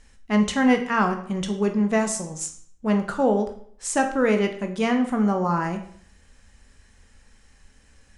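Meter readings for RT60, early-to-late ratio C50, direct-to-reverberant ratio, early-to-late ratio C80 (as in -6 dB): 0.55 s, 9.5 dB, 5.0 dB, 13.5 dB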